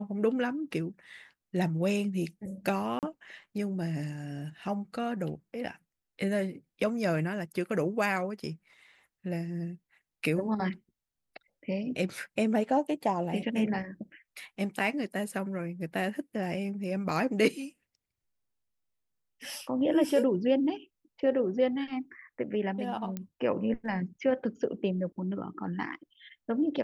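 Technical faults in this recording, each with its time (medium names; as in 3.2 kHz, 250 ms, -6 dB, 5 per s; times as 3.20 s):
2.99–3.03 s: dropout 38 ms
23.17 s: pop -22 dBFS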